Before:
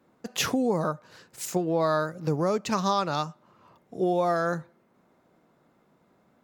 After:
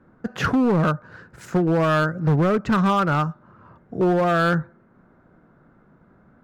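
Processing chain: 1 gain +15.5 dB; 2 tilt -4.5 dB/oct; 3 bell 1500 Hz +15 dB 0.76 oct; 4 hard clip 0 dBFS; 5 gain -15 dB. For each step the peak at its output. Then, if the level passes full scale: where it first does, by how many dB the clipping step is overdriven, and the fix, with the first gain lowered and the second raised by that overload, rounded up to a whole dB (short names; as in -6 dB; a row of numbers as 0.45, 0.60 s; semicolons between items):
+3.5, +8.0, +8.5, 0.0, -15.0 dBFS; step 1, 8.5 dB; step 1 +6.5 dB, step 5 -6 dB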